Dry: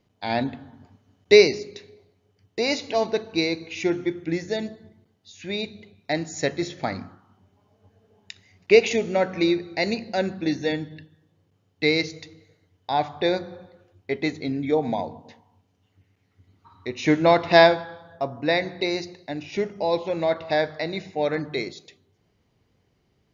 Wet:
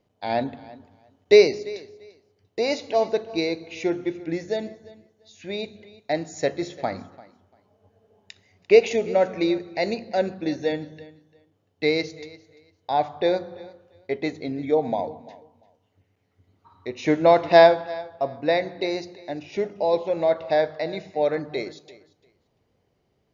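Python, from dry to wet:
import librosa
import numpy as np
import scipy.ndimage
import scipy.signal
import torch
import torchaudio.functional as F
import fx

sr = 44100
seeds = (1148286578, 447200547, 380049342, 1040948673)

p1 = fx.peak_eq(x, sr, hz=580.0, db=7.5, octaves=1.3)
p2 = p1 + fx.echo_feedback(p1, sr, ms=344, feedback_pct=19, wet_db=-20, dry=0)
y = p2 * librosa.db_to_amplitude(-4.5)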